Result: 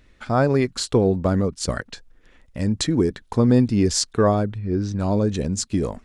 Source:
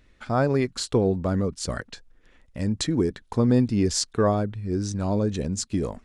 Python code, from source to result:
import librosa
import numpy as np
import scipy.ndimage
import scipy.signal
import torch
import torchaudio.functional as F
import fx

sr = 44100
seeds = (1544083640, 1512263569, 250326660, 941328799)

y = fx.transient(x, sr, attack_db=3, sustain_db=-3, at=(1.14, 1.86))
y = fx.lowpass(y, sr, hz=3500.0, slope=12, at=(4.58, 4.99))
y = y * librosa.db_to_amplitude(3.5)